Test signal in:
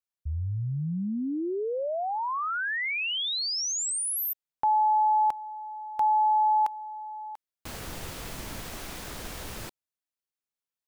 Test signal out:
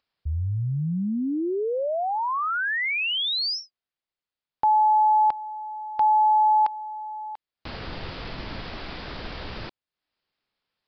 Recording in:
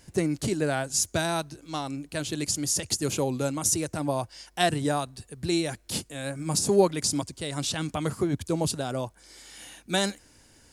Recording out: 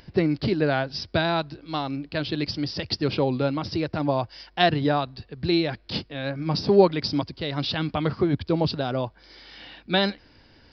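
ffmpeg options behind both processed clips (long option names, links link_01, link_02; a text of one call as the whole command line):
ffmpeg -i in.wav -af "acompressor=mode=upward:threshold=-57dB:ratio=1.5:attack=24:release=254:knee=2.83:detection=peak,aresample=11025,aresample=44100,volume=4dB" out.wav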